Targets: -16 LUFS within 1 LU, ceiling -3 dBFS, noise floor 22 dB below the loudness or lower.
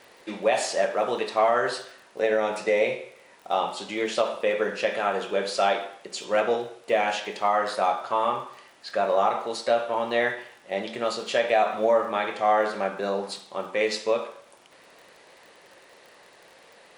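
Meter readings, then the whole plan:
ticks 35/s; loudness -25.5 LUFS; peak -9.5 dBFS; loudness target -16.0 LUFS
-> de-click; gain +9.5 dB; limiter -3 dBFS

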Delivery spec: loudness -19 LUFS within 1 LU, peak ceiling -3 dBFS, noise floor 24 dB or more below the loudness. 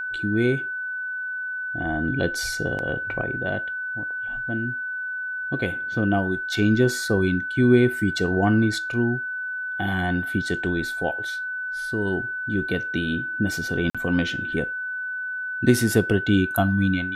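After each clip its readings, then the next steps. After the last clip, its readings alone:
dropouts 1; longest dropout 46 ms; steady tone 1500 Hz; tone level -27 dBFS; loudness -24.0 LUFS; peak -4.5 dBFS; loudness target -19.0 LUFS
-> interpolate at 13.9, 46 ms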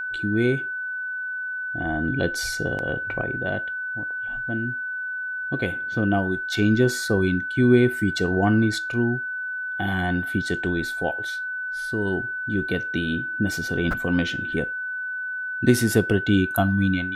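dropouts 0; steady tone 1500 Hz; tone level -27 dBFS
-> notch 1500 Hz, Q 30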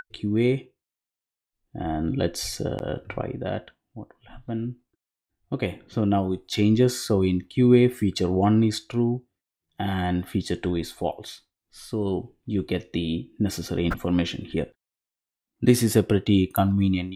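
steady tone none; loudness -25.0 LUFS; peak -5.0 dBFS; loudness target -19.0 LUFS
-> gain +6 dB; limiter -3 dBFS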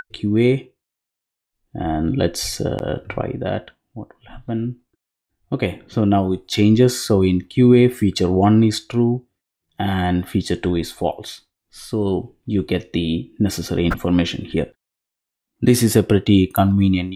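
loudness -19.0 LUFS; peak -3.0 dBFS; noise floor -84 dBFS

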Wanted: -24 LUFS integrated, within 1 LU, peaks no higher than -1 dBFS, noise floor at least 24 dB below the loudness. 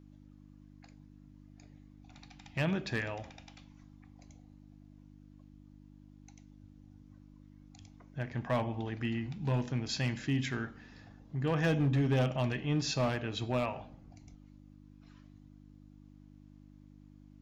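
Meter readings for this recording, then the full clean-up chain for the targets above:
clipped 0.6%; flat tops at -23.5 dBFS; hum 50 Hz; harmonics up to 300 Hz; hum level -55 dBFS; loudness -33.5 LUFS; peak -23.5 dBFS; loudness target -24.0 LUFS
-> clip repair -23.5 dBFS; de-hum 50 Hz, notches 6; gain +9.5 dB

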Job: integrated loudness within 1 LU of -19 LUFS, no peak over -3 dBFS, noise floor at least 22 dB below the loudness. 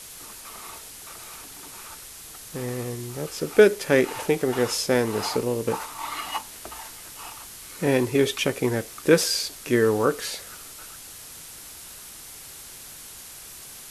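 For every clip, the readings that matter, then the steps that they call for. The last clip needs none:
noise floor -43 dBFS; noise floor target -46 dBFS; loudness -24.0 LUFS; peak -3.5 dBFS; loudness target -19.0 LUFS
-> denoiser 6 dB, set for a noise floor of -43 dBFS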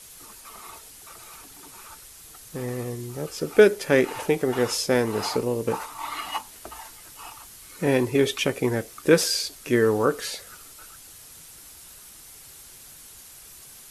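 noise floor -47 dBFS; loudness -24.0 LUFS; peak -4.0 dBFS; loudness target -19.0 LUFS
-> gain +5 dB; limiter -3 dBFS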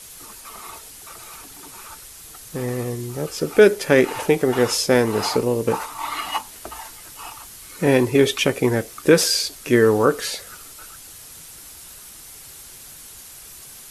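loudness -19.5 LUFS; peak -3.0 dBFS; noise floor -42 dBFS

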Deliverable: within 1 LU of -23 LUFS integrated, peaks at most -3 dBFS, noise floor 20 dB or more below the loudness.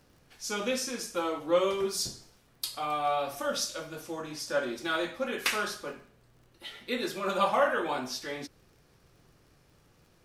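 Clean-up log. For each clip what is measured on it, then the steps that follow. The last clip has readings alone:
ticks 40/s; loudness -31.5 LUFS; peak -12.5 dBFS; loudness target -23.0 LUFS
-> de-click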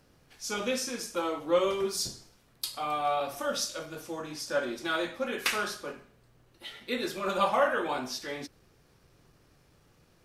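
ticks 0.20/s; loudness -31.5 LUFS; peak -12.5 dBFS; loudness target -23.0 LUFS
-> gain +8.5 dB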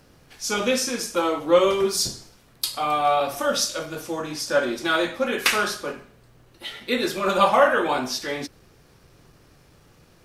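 loudness -23.0 LUFS; peak -4.0 dBFS; noise floor -55 dBFS

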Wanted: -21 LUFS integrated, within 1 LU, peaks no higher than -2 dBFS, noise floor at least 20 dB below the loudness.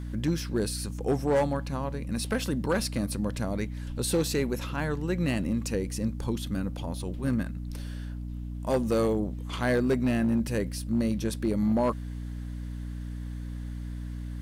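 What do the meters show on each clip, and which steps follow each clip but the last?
clipped 0.8%; flat tops at -19.0 dBFS; hum 60 Hz; harmonics up to 300 Hz; hum level -33 dBFS; loudness -30.0 LUFS; peak -19.0 dBFS; loudness target -21.0 LUFS
-> clip repair -19 dBFS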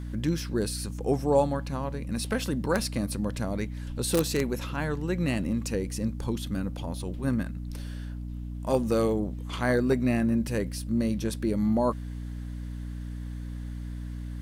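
clipped 0.0%; hum 60 Hz; harmonics up to 300 Hz; hum level -33 dBFS
-> de-hum 60 Hz, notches 5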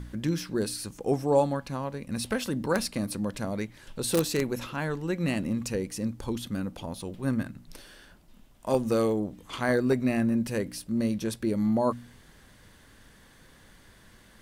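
hum none; loudness -29.5 LUFS; peak -9.0 dBFS; loudness target -21.0 LUFS
-> gain +8.5 dB; limiter -2 dBFS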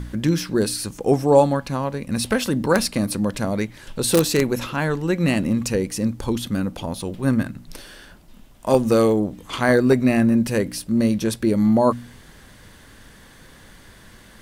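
loudness -21.0 LUFS; peak -2.0 dBFS; noise floor -47 dBFS

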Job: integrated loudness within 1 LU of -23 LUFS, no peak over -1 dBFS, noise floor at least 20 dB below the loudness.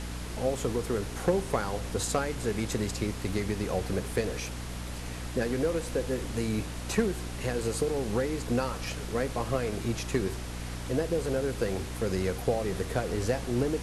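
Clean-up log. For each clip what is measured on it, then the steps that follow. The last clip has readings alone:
hum 60 Hz; harmonics up to 300 Hz; hum level -36 dBFS; noise floor -38 dBFS; noise floor target -51 dBFS; loudness -31.0 LUFS; peak -14.5 dBFS; loudness target -23.0 LUFS
-> de-hum 60 Hz, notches 5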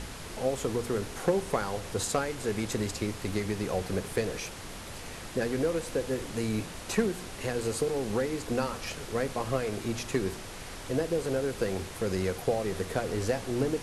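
hum none; noise floor -42 dBFS; noise floor target -52 dBFS
-> noise print and reduce 10 dB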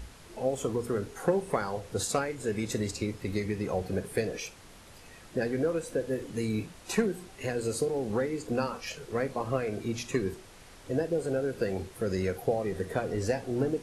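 noise floor -52 dBFS; loudness -32.0 LUFS; peak -15.5 dBFS; loudness target -23.0 LUFS
-> gain +9 dB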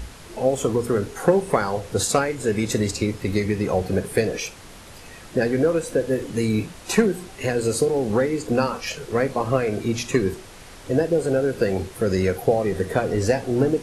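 loudness -23.0 LUFS; peak -6.5 dBFS; noise floor -43 dBFS

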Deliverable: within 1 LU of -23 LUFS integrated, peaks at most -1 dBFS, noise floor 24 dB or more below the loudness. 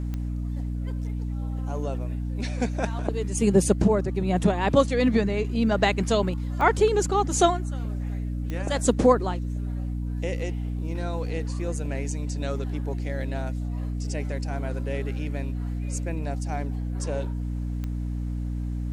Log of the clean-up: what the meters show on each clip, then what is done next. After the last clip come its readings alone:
clicks 4; hum 60 Hz; harmonics up to 300 Hz; hum level -26 dBFS; loudness -26.5 LUFS; peak -6.5 dBFS; loudness target -23.0 LUFS
-> de-click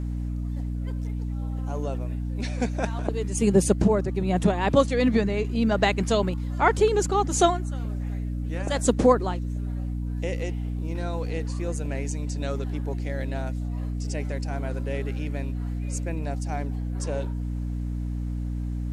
clicks 0; hum 60 Hz; harmonics up to 300 Hz; hum level -26 dBFS
-> notches 60/120/180/240/300 Hz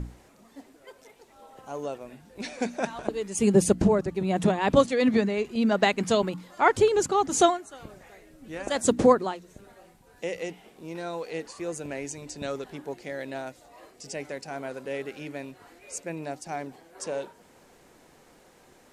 hum none; loudness -27.0 LUFS; peak -6.5 dBFS; loudness target -23.0 LUFS
-> gain +4 dB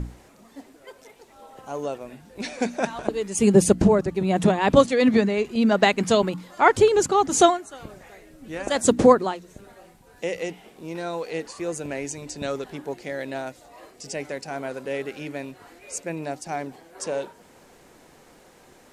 loudness -23.0 LUFS; peak -2.5 dBFS; noise floor -53 dBFS

